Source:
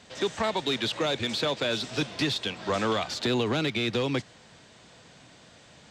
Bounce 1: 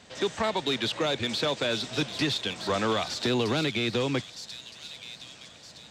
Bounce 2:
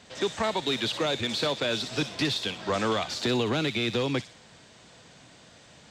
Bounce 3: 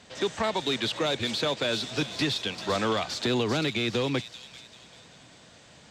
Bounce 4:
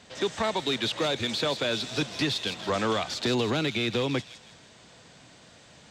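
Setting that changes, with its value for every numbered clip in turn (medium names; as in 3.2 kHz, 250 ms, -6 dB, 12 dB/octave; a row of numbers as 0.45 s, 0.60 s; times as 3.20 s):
feedback echo behind a high-pass, time: 1266 ms, 60 ms, 392 ms, 161 ms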